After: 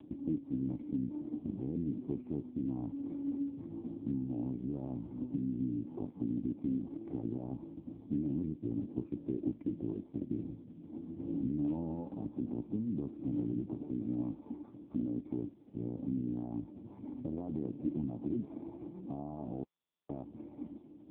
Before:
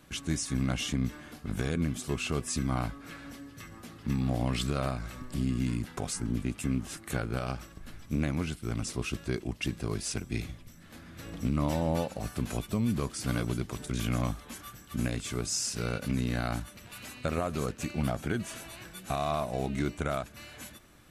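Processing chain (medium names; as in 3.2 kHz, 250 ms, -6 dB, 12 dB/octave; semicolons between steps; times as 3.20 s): 13.73–15.38 s: bass shelf 180 Hz -6.5 dB; 17.58–18.49 s: de-hum 141.9 Hz, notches 12; peak limiter -26.5 dBFS, peak gain reduction 7.5 dB; 19.64–20.09 s: mute; compression 3:1, threshold -38 dBFS, peak gain reduction 6 dB; cascade formant filter u; trim +14.5 dB; AMR-NB 5.15 kbps 8 kHz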